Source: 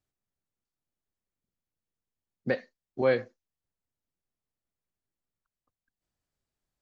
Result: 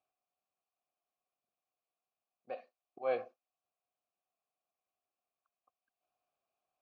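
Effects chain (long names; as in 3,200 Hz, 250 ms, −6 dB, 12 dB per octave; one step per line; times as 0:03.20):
volume swells 340 ms
formant filter a
level +13.5 dB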